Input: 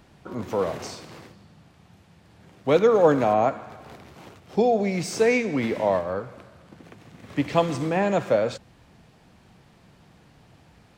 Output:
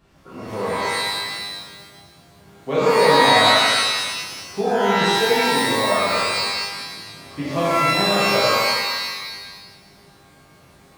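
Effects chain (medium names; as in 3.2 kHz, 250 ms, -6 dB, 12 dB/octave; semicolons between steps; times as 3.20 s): pitch-shifted reverb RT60 1.4 s, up +12 st, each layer -2 dB, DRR -9 dB; trim -8.5 dB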